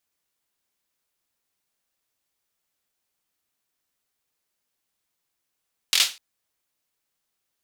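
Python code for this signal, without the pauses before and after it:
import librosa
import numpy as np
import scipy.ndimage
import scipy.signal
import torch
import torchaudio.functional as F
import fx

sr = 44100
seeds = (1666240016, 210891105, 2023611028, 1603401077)

y = fx.drum_clap(sr, seeds[0], length_s=0.25, bursts=4, spacing_ms=23, hz=3600.0, decay_s=0.28)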